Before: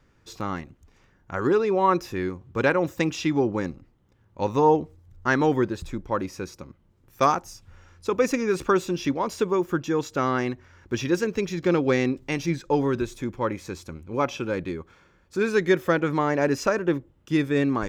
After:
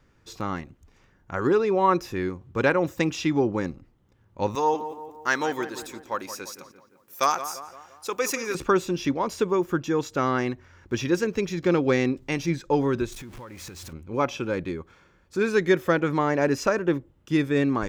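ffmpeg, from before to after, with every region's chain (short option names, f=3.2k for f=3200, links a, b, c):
-filter_complex "[0:a]asettb=1/sr,asplit=3[a][b][c];[a]atrim=end=4.554[d];[b]atrim=start=4.55:end=8.55,asetpts=PTS-STARTPTS,afade=t=in:d=0.004:c=qsin,afade=t=out:st=3.996:d=0.004:c=qsin,highpass=f=830:p=1,aemphasis=mode=production:type=50kf,asplit=2[e][f];[f]adelay=172,lowpass=f=2.3k:p=1,volume=-11dB,asplit=2[g][h];[h]adelay=172,lowpass=f=2.3k:p=1,volume=0.53,asplit=2[i][j];[j]adelay=172,lowpass=f=2.3k:p=1,volume=0.53,asplit=2[k][l];[l]adelay=172,lowpass=f=2.3k:p=1,volume=0.53,asplit=2[m][n];[n]adelay=172,lowpass=f=2.3k:p=1,volume=0.53,asplit=2[o][p];[p]adelay=172,lowpass=f=2.3k:p=1,volume=0.53[q];[e][g][i][k][m][o][q]amix=inputs=7:normalize=0,atrim=end_sample=176400[r];[c]atrim=start=8.546[s];[d][r]acrossfade=d=0.004:c1=hsin:c2=qsin[t];[t][s]acrossfade=d=0.004:c1=qsin:c2=hsin,asettb=1/sr,asplit=3[u][v][w];[u]atrim=end=13.124[x];[v]atrim=start=13.12:end=13.93,asetpts=PTS-STARTPTS,afade=t=in:d=0.004:c=qsin,afade=t=out:st=0.806:d=0.004:c=qsin,aeval=exprs='val(0)+0.5*0.0141*sgn(val(0))':c=same,equalizer=f=380:w=0.56:g=-5,acompressor=threshold=-37dB:ratio=12:attack=3.2:release=140:knee=1:detection=peak[y];[w]atrim=start=13.926[z];[x][y]acrossfade=d=0.004:c1=hsin:c2=qsin[aa];[aa][z]acrossfade=d=0.004:c1=qsin:c2=hsin"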